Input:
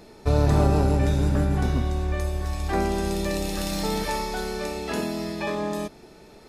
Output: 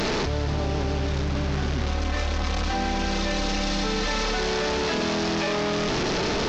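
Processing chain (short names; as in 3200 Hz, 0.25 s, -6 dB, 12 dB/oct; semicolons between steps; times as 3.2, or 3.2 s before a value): delta modulation 32 kbps, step -21 dBFS; 1.88–4.39 comb 3.9 ms, depth 75%; split-band echo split 860 Hz, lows 84 ms, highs 0.291 s, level -14 dB; fast leveller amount 100%; gain -8 dB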